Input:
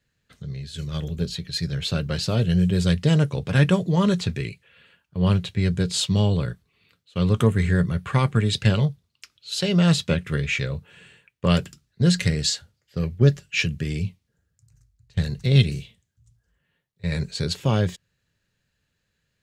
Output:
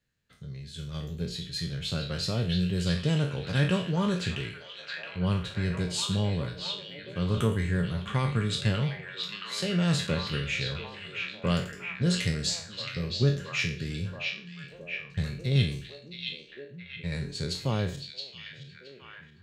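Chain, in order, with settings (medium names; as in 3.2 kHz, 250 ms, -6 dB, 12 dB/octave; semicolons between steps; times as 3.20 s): spectral sustain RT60 0.42 s; repeats whose band climbs or falls 671 ms, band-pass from 3.2 kHz, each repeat -0.7 oct, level -1 dB; trim -8 dB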